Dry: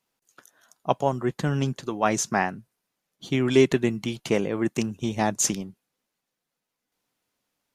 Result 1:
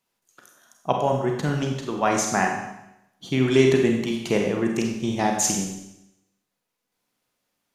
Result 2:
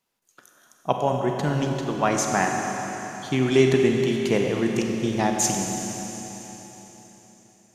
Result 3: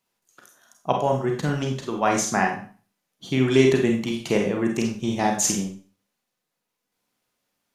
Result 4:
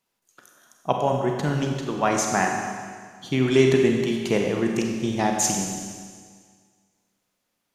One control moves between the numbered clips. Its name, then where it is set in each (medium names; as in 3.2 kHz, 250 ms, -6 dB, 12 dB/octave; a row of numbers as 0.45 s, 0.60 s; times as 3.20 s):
Schroeder reverb, RT60: 0.86 s, 4.1 s, 0.4 s, 1.8 s